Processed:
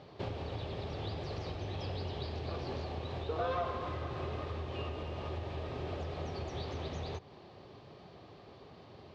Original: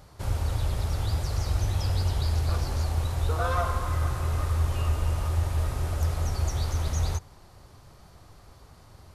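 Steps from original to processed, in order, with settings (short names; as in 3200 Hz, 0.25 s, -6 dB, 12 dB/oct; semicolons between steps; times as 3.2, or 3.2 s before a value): compressor 3:1, threshold -31 dBFS, peak gain reduction 8.5 dB; speaker cabinet 170–3800 Hz, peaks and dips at 400 Hz +5 dB, 950 Hz -5 dB, 1400 Hz -10 dB, 2000 Hz -4 dB; gain +3.5 dB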